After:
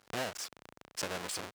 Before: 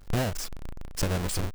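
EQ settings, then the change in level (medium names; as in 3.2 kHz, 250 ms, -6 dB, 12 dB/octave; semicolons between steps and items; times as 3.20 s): frequency weighting A; -4.0 dB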